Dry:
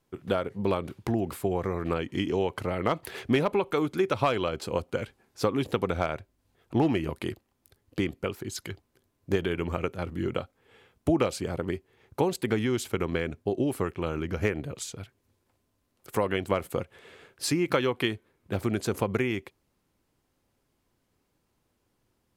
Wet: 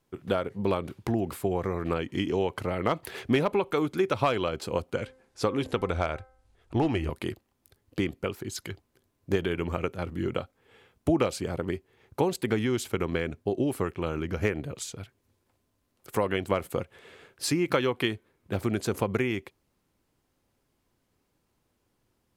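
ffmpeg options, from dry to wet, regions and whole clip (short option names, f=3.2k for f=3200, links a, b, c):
-filter_complex "[0:a]asettb=1/sr,asplit=3[a][b][c];[a]atrim=end=4.954[d];[b]atrim=start=4.95:end=7.1,asetpts=PTS-STARTPTS,afade=t=in:d=0.004:c=qsin,afade=t=out:st=2.146:d=0.004:c=qsin,lowpass=f=11k:w=0.5412,lowpass=f=11k:w=1.3066,asubboost=boost=11:cutoff=64,bandreject=f=259.7:t=h:w=4,bandreject=f=519.4:t=h:w=4,bandreject=f=779.1:t=h:w=4,bandreject=f=1.0388k:t=h:w=4,bandreject=f=1.2985k:t=h:w=4,bandreject=f=1.5582k:t=h:w=4,bandreject=f=1.8179k:t=h:w=4,bandreject=f=2.0776k:t=h:w=4[e];[c]atrim=start=7.096[f];[d][e]acrossfade=d=0.004:c1=hsin:c2=qsin[g];[g][f]acrossfade=d=0.004:c1=qsin:c2=hsin"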